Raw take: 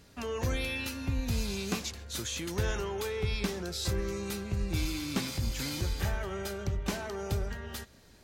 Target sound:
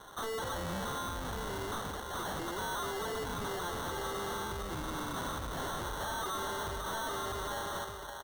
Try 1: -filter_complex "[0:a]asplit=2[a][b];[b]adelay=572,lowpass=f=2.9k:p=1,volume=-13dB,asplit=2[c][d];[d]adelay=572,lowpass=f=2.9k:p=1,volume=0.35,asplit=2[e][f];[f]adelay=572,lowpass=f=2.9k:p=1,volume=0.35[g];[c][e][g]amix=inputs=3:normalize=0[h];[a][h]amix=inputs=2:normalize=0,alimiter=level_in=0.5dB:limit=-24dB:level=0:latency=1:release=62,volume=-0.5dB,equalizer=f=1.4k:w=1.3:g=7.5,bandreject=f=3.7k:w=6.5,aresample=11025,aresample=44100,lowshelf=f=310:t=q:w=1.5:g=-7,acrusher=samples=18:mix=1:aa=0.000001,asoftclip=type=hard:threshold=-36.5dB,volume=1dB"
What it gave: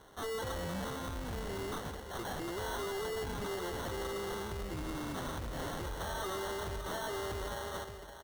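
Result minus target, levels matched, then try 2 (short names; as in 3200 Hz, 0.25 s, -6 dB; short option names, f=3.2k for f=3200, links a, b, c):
1000 Hz band -2.5 dB
-filter_complex "[0:a]asplit=2[a][b];[b]adelay=572,lowpass=f=2.9k:p=1,volume=-13dB,asplit=2[c][d];[d]adelay=572,lowpass=f=2.9k:p=1,volume=0.35,asplit=2[e][f];[f]adelay=572,lowpass=f=2.9k:p=1,volume=0.35[g];[c][e][g]amix=inputs=3:normalize=0[h];[a][h]amix=inputs=2:normalize=0,alimiter=level_in=0.5dB:limit=-24dB:level=0:latency=1:release=62,volume=-0.5dB,equalizer=f=1.4k:w=1.3:g=18.5,bandreject=f=3.7k:w=6.5,aresample=11025,aresample=44100,lowshelf=f=310:t=q:w=1.5:g=-7,acrusher=samples=18:mix=1:aa=0.000001,asoftclip=type=hard:threshold=-36.5dB,volume=1dB"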